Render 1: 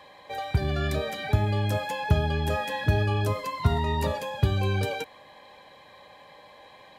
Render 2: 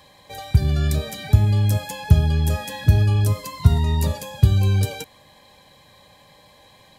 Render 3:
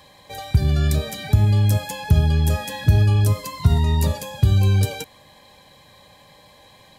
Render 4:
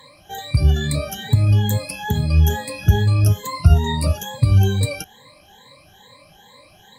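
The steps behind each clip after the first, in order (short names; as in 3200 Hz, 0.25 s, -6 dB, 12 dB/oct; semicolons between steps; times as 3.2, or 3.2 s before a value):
tone controls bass +13 dB, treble +15 dB; gain -3.5 dB
maximiser +5.5 dB; gain -4 dB
moving spectral ripple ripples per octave 1, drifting +2.3 Hz, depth 23 dB; gain -3.5 dB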